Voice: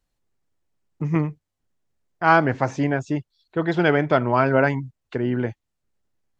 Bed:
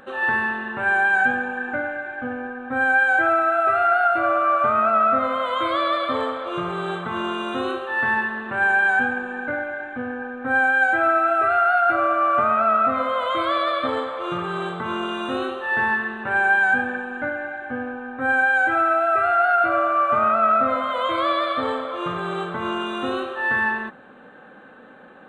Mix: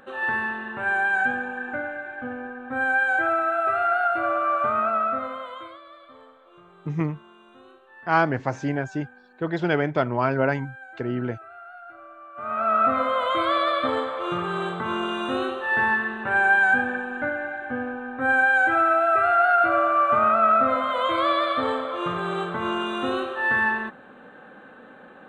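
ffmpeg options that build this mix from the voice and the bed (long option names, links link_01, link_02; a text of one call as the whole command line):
ffmpeg -i stem1.wav -i stem2.wav -filter_complex "[0:a]adelay=5850,volume=-4dB[link_01];[1:a]volume=20.5dB,afade=type=out:start_time=4.8:duration=1:silence=0.0891251,afade=type=in:start_time=12.35:duration=0.49:silence=0.0595662[link_02];[link_01][link_02]amix=inputs=2:normalize=0" out.wav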